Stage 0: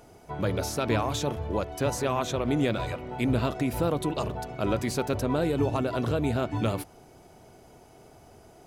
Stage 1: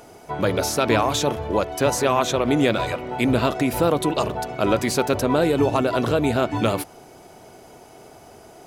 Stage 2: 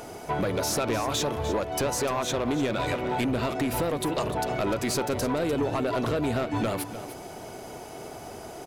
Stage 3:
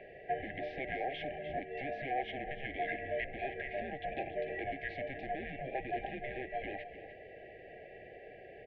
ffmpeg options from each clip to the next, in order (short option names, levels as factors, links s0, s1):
-af "lowshelf=f=160:g=-10.5,volume=2.82"
-af "acompressor=threshold=0.0447:ratio=5,asoftclip=type=tanh:threshold=0.0531,aecho=1:1:299:0.237,volume=1.78"
-filter_complex "[0:a]highpass=f=160:t=q:w=0.5412,highpass=f=160:t=q:w=1.307,lowpass=f=3100:t=q:w=0.5176,lowpass=f=3100:t=q:w=0.7071,lowpass=f=3100:t=q:w=1.932,afreqshift=-280,afftfilt=real='re*(1-between(b*sr/4096,800,1600))':imag='im*(1-between(b*sr/4096,800,1600))':win_size=4096:overlap=0.75,acrossover=split=590 2200:gain=0.0794 1 0.251[s0][s1][s2];[s0][s1][s2]amix=inputs=3:normalize=0,volume=1.12"